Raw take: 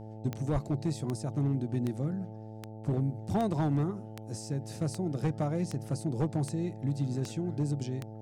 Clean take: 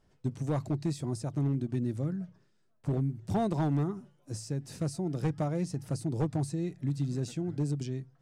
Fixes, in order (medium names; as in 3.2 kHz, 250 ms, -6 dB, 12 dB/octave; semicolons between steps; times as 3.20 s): de-click; de-hum 109.1 Hz, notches 8; 0.52–0.64 s: high-pass 140 Hz 24 dB/octave